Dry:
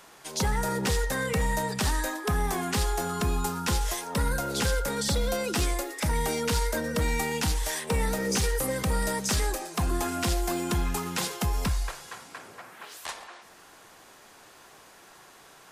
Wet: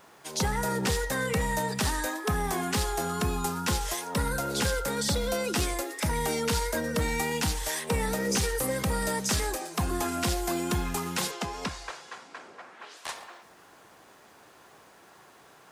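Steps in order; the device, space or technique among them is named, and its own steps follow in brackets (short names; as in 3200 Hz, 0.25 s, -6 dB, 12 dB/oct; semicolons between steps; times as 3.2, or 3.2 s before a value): HPF 62 Hz; plain cassette with noise reduction switched in (mismatched tape noise reduction decoder only; wow and flutter 24 cents; white noise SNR 41 dB); 11.31–13.05 three-band isolator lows -14 dB, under 200 Hz, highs -21 dB, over 7600 Hz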